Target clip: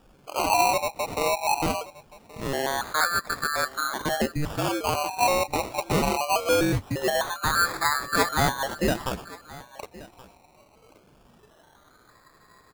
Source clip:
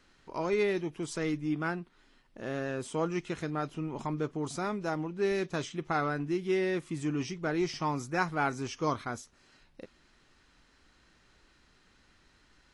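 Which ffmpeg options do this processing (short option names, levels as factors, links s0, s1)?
-af "afftfilt=real='real(if(lt(b,736),b+184*(1-2*mod(floor(b/184),2)),b),0)':imag='imag(if(lt(b,736),b+184*(1-2*mod(floor(b/184),2)),b),0)':win_size=2048:overlap=0.75,acrusher=samples=21:mix=1:aa=0.000001:lfo=1:lforange=12.6:lforate=0.22,aecho=1:1:1125:0.1,volume=2.24"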